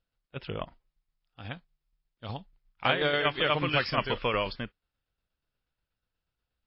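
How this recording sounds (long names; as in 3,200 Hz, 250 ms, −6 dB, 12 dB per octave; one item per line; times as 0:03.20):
tremolo saw down 8.3 Hz, depth 50%
MP3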